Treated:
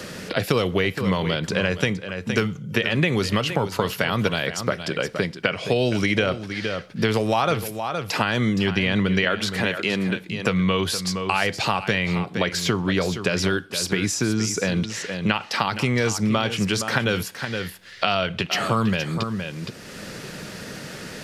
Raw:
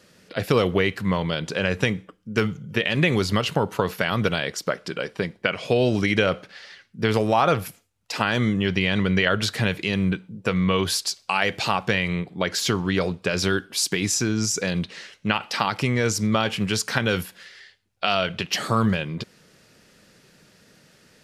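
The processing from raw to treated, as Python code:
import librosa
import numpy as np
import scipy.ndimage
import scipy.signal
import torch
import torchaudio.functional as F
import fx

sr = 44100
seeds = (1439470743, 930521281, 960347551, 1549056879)

y = fx.highpass(x, sr, hz=240.0, slope=12, at=(9.24, 10.16))
y = y + 10.0 ** (-12.5 / 20.0) * np.pad(y, (int(467 * sr / 1000.0), 0))[:len(y)]
y = fx.band_squash(y, sr, depth_pct=70)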